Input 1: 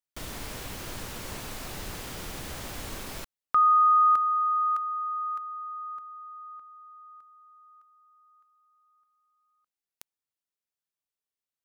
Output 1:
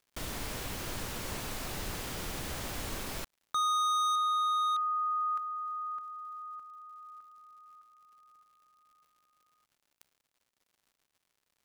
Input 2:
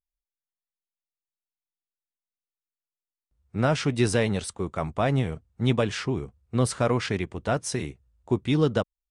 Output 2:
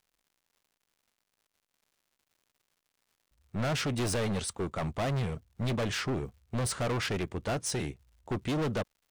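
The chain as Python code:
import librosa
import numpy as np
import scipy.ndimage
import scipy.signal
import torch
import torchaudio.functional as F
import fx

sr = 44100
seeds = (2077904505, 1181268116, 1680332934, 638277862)

y = np.clip(10.0 ** (28.0 / 20.0) * x, -1.0, 1.0) / 10.0 ** (28.0 / 20.0)
y = fx.dmg_crackle(y, sr, seeds[0], per_s=180.0, level_db=-58.0)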